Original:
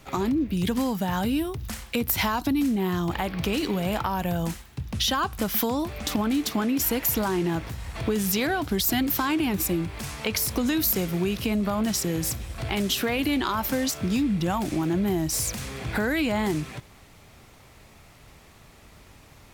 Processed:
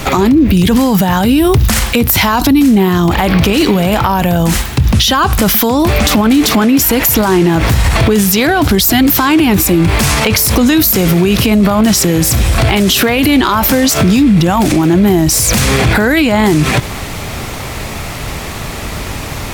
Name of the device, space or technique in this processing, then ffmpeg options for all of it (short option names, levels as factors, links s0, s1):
loud club master: -af "acompressor=threshold=0.0398:ratio=2,asoftclip=type=hard:threshold=0.106,alimiter=level_in=35.5:limit=0.891:release=50:level=0:latency=1,volume=0.841"